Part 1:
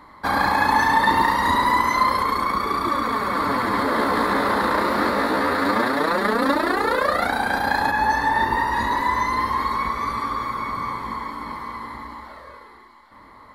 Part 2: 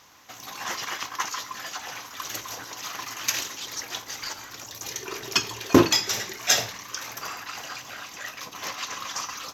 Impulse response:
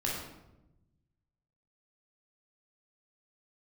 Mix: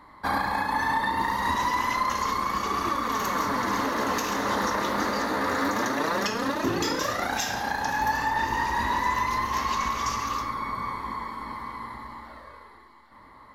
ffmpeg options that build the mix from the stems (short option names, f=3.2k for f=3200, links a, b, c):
-filter_complex "[0:a]volume=-6dB,asplit=2[a][b];[b]volume=-13.5dB[c];[1:a]adelay=900,volume=-7dB,asplit=2[d][e];[e]volume=-5dB[f];[2:a]atrim=start_sample=2205[g];[c][f]amix=inputs=2:normalize=0[h];[h][g]afir=irnorm=-1:irlink=0[i];[a][d][i]amix=inputs=3:normalize=0,alimiter=limit=-15.5dB:level=0:latency=1:release=473"